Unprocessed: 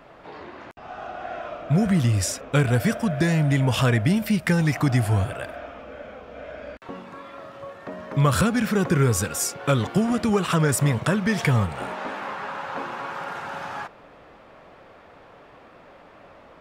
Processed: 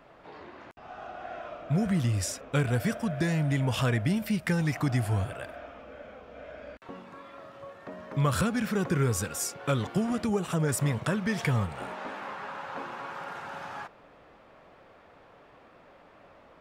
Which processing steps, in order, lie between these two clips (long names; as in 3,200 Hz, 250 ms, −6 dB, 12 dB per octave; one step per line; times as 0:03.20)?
gain on a spectral selection 0:10.27–0:10.68, 910–5,700 Hz −6 dB
level −6.5 dB